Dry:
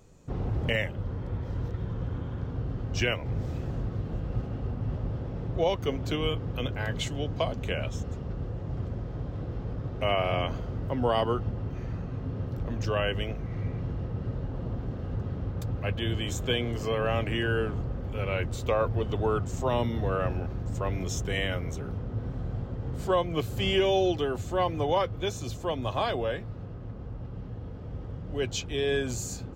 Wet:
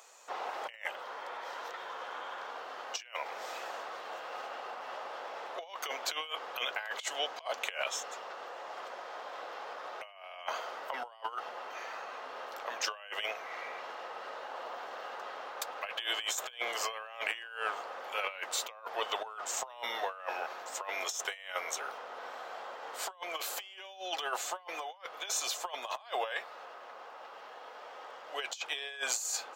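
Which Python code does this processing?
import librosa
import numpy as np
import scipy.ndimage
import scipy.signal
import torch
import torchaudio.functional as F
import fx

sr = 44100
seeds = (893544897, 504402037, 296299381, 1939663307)

y = scipy.signal.sosfilt(scipy.signal.butter(4, 740.0, 'highpass', fs=sr, output='sos'), x)
y = fx.over_compress(y, sr, threshold_db=-41.0, ratio=-0.5)
y = y * librosa.db_to_amplitude(4.5)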